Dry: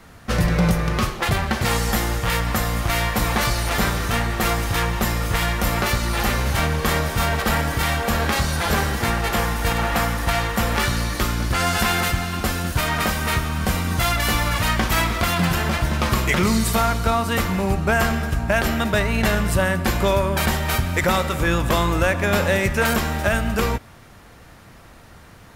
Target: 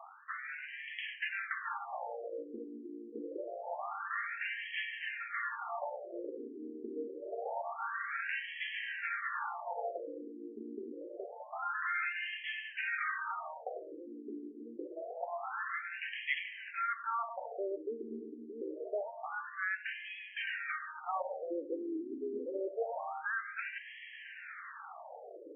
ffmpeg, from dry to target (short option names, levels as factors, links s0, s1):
-af "bandreject=f=1000:w=6.4,areverse,acompressor=threshold=0.0178:ratio=6,areverse,afftfilt=real='re*between(b*sr/1024,310*pow(2400/310,0.5+0.5*sin(2*PI*0.26*pts/sr))/1.41,310*pow(2400/310,0.5+0.5*sin(2*PI*0.26*pts/sr))*1.41)':imag='im*between(b*sr/1024,310*pow(2400/310,0.5+0.5*sin(2*PI*0.26*pts/sr))/1.41,310*pow(2400/310,0.5+0.5*sin(2*PI*0.26*pts/sr))*1.41)':win_size=1024:overlap=0.75,volume=2.11"